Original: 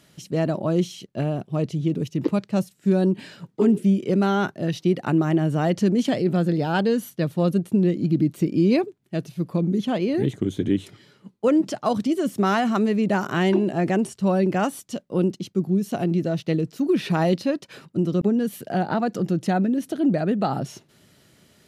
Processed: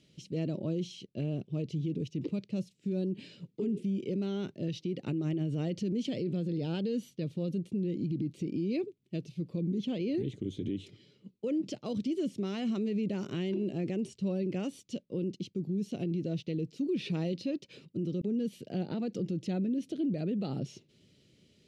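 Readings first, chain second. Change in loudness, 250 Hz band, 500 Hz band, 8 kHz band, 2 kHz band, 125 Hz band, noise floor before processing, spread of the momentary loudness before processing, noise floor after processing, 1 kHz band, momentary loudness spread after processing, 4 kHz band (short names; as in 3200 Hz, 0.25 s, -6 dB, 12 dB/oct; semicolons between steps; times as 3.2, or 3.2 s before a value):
-11.5 dB, -11.0 dB, -12.5 dB, under -10 dB, -18.5 dB, -10.5 dB, -60 dBFS, 6 LU, -68 dBFS, -23.5 dB, 6 LU, -9.5 dB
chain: LPF 5400 Hz 12 dB/oct; band shelf 1100 Hz -15 dB; limiter -19 dBFS, peak gain reduction 9.5 dB; gain -6.5 dB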